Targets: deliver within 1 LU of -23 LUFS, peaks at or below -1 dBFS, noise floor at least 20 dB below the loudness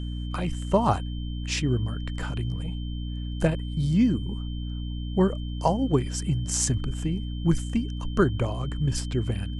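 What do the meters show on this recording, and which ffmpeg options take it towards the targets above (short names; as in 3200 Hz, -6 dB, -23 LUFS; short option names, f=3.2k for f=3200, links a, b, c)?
hum 60 Hz; harmonics up to 300 Hz; hum level -29 dBFS; steady tone 3100 Hz; tone level -46 dBFS; loudness -27.5 LUFS; peak -8.0 dBFS; loudness target -23.0 LUFS
-> -af "bandreject=f=60:t=h:w=6,bandreject=f=120:t=h:w=6,bandreject=f=180:t=h:w=6,bandreject=f=240:t=h:w=6,bandreject=f=300:t=h:w=6"
-af "bandreject=f=3.1k:w=30"
-af "volume=4.5dB"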